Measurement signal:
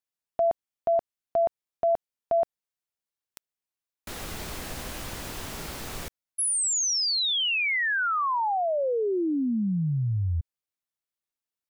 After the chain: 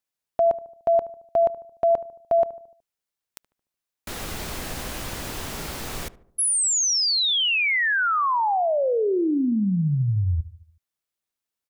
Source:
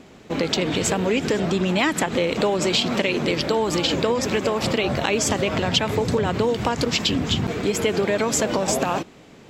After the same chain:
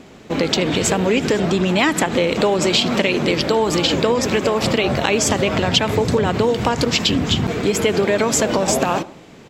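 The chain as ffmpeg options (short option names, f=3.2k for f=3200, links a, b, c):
-filter_complex "[0:a]asplit=2[a][b];[b]adelay=74,lowpass=f=1.2k:p=1,volume=-16dB,asplit=2[c][d];[d]adelay=74,lowpass=f=1.2k:p=1,volume=0.54,asplit=2[e][f];[f]adelay=74,lowpass=f=1.2k:p=1,volume=0.54,asplit=2[g][h];[h]adelay=74,lowpass=f=1.2k:p=1,volume=0.54,asplit=2[i][j];[j]adelay=74,lowpass=f=1.2k:p=1,volume=0.54[k];[a][c][e][g][i][k]amix=inputs=6:normalize=0,volume=4dB"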